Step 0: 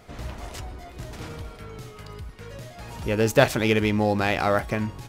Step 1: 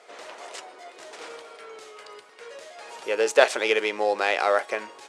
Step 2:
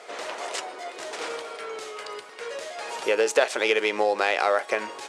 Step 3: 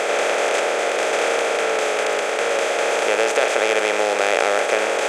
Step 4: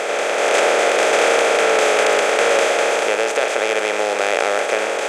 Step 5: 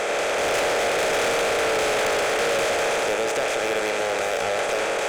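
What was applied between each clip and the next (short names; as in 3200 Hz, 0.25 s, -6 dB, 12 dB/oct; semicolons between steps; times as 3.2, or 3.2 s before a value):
Chebyshev band-pass 440–9100 Hz, order 3; gain +1.5 dB
compressor 3:1, threshold -28 dBFS, peak gain reduction 13 dB; gain +7.5 dB
per-bin compression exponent 0.2; gain -3 dB
AGC; gain -1 dB
soft clip -19.5 dBFS, distortion -8 dB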